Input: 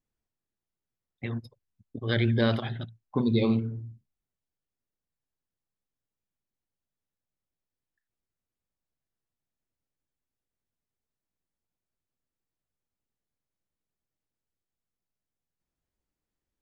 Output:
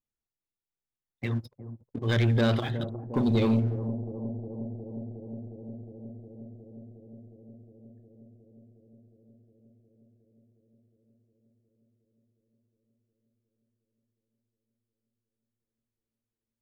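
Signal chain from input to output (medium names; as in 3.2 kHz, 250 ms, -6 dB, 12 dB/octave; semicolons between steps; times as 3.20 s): dynamic bell 110 Hz, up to +3 dB, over -37 dBFS, Q 5.2; waveshaping leveller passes 2; bucket-brigade echo 360 ms, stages 2048, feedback 82%, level -12 dB; trim -5 dB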